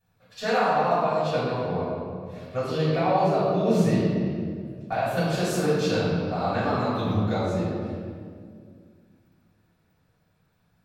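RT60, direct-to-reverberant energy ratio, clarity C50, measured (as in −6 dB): 2.1 s, −13.5 dB, −2.0 dB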